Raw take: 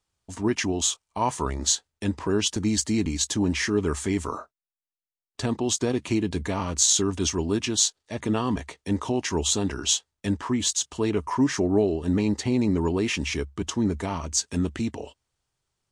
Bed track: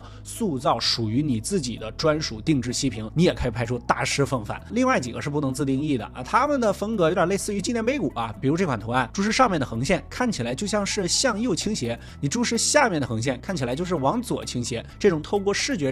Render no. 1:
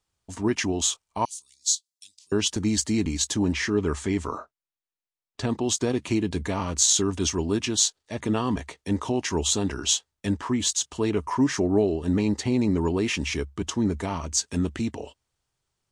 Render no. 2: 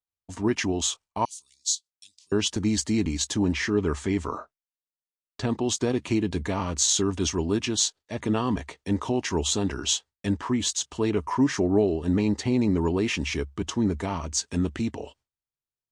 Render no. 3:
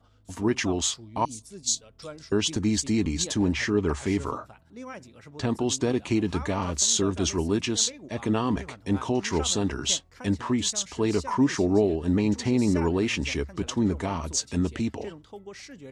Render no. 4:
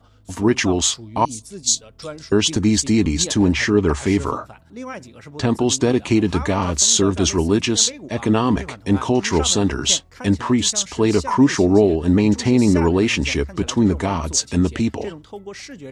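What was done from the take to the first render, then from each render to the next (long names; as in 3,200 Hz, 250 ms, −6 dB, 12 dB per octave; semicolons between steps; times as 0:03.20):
0:01.25–0:02.32: inverse Chebyshev high-pass filter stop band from 1,600 Hz, stop band 50 dB; 0:03.52–0:05.50: high-frequency loss of the air 50 metres
noise gate with hold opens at −45 dBFS; high-shelf EQ 9,200 Hz −9 dB
mix in bed track −19.5 dB
level +8 dB; brickwall limiter −2 dBFS, peak gain reduction 1 dB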